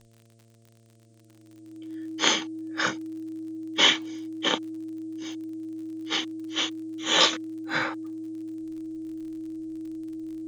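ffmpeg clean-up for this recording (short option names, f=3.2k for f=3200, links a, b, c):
-af "adeclick=t=4,bandreject=f=113.8:t=h:w=4,bandreject=f=227.6:t=h:w=4,bandreject=f=341.4:t=h:w=4,bandreject=f=455.2:t=h:w=4,bandreject=f=569:t=h:w=4,bandreject=f=682.8:t=h:w=4,bandreject=f=320:w=30,agate=range=-21dB:threshold=-49dB"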